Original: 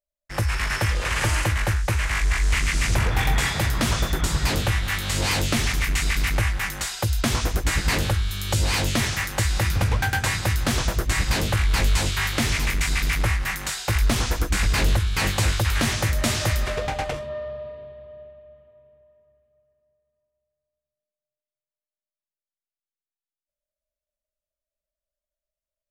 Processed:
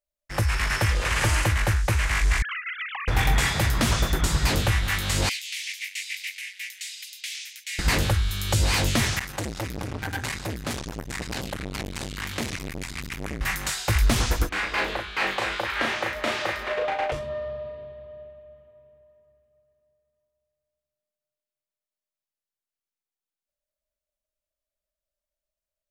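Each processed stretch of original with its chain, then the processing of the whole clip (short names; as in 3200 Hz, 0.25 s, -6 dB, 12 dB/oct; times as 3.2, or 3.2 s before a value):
2.42–3.08 sine-wave speech + compressor 10:1, threshold -29 dBFS
5.29–7.79 steep high-pass 2100 Hz 48 dB/oct + tilt -2.5 dB/oct
9.19–13.41 flange 1.7 Hz, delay 3.4 ms, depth 9.7 ms, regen -23% + core saturation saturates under 750 Hz
14.49–17.12 three-band isolator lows -24 dB, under 310 Hz, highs -19 dB, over 3500 Hz + doubler 36 ms -3 dB
whole clip: dry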